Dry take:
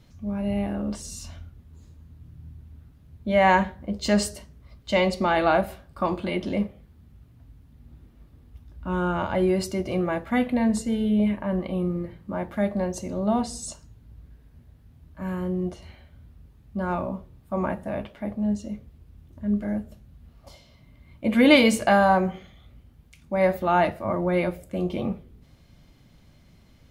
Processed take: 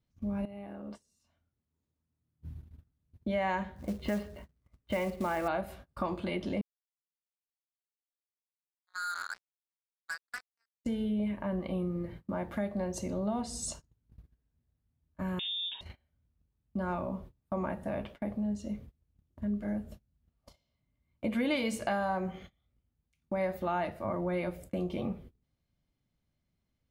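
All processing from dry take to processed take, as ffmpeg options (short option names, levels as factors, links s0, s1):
-filter_complex "[0:a]asettb=1/sr,asplit=3[s0][s1][s2];[s0]atrim=end=0.454[s3];[s1]atrim=start=0.45:end=2.41,asetpts=PTS-STARTPTS,afade=t=in:d=0.004:c=qsin,afade=t=out:st=1.956:d=0.004:c=qsin,highpass=f=320:p=1,acompressor=threshold=0.0126:ratio=12:attack=3.2:release=140:knee=1:detection=peak,equalizer=f=7200:w=0.39:g=-7.5[s4];[s2]atrim=start=2.406[s5];[s3][s4]acrossfade=d=0.004:c1=hsin:c2=qsin[s6];[s6][s5]acrossfade=d=0.004:c1=qsin:c2=hsin,asettb=1/sr,asplit=3[s7][s8][s9];[s7]atrim=end=3.764[s10];[s8]atrim=start=3.76:end=5.48,asetpts=PTS-STARTPTS,afade=t=in:d=0.004:c=qsin,afade=t=out:st=1.716:d=0.004:c=qsin,lowpass=f=2500:w=0.5412,lowpass=f=2500:w=1.3066,acrusher=bits=5:mode=log:mix=0:aa=0.000001[s11];[s9]atrim=start=5.476[s12];[s10][s11]acrossfade=d=0.004:c1=hsin:c2=qsin[s13];[s13][s12]acrossfade=d=0.004:c1=qsin:c2=hsin,asettb=1/sr,asplit=3[s14][s15][s16];[s14]atrim=end=6.614[s17];[s15]atrim=start=6.61:end=10.85,asetpts=PTS-STARTPTS,afade=t=in:d=0.004:c=qsin,afade=t=out:st=4.236:d=0.004:c=qsin,asuperpass=centerf=1500:order=4:qfactor=4,acrusher=bits=5:mix=0:aa=0.5[s18];[s16]atrim=start=10.846[s19];[s17][s18]acrossfade=d=0.004:c1=hsin:c2=qsin[s20];[s20][s19]acrossfade=d=0.004:c1=qsin:c2=hsin,asettb=1/sr,asplit=3[s21][s22][s23];[s21]atrim=end=15.394[s24];[s22]atrim=start=15.39:end=15.81,asetpts=PTS-STARTPTS,afade=t=in:d=0.004:c=qsin,afade=t=out:st=0.416:d=0.004:c=qsin,equalizer=f=1000:w=3.5:g=13,acompressor=threshold=0.0316:ratio=6:attack=3.2:release=140:knee=1:detection=peak,lowpass=f=3200:t=q:w=0.5098,lowpass=f=3200:t=q:w=0.6013,lowpass=f=3200:t=q:w=0.9,lowpass=f=3200:t=q:w=2.563,afreqshift=-3800[s25];[s23]atrim=start=15.806[s26];[s24][s25]acrossfade=d=0.004:c1=hsin:c2=qsin[s27];[s27][s26]acrossfade=d=0.004:c1=qsin:c2=hsin,agate=range=0.0501:threshold=0.00708:ratio=16:detection=peak,acompressor=threshold=0.0224:ratio=3"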